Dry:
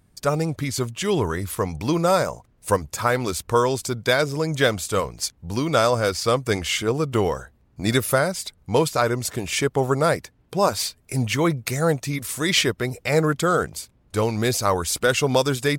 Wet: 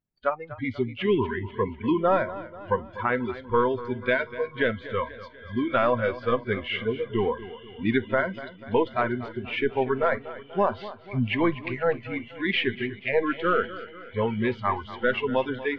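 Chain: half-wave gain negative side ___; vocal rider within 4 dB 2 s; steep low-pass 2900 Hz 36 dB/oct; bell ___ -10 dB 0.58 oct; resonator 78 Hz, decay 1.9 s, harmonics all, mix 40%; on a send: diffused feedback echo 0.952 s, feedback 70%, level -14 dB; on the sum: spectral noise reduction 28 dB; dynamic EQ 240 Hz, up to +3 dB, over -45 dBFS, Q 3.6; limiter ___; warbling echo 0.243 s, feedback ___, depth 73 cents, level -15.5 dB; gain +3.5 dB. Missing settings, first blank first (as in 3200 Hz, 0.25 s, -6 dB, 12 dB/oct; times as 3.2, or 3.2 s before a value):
-3 dB, 75 Hz, -14.5 dBFS, 52%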